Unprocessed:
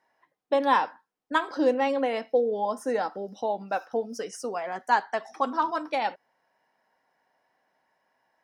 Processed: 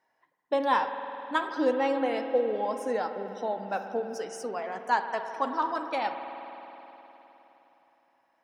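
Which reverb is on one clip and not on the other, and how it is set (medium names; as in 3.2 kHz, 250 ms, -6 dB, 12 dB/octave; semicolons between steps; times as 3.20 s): spring tank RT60 3.7 s, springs 51 ms, chirp 35 ms, DRR 7 dB; trim -3 dB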